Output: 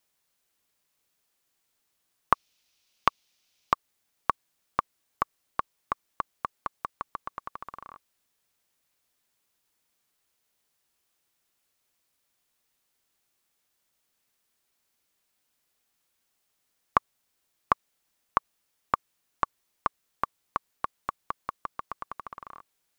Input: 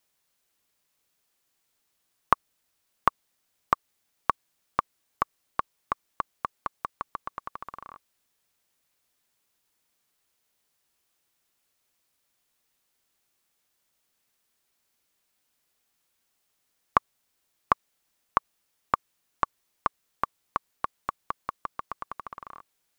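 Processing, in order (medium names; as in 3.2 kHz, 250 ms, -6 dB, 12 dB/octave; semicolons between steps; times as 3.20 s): 2.33–3.73 s: high-order bell 3.8 kHz +9.5 dB; trim -1 dB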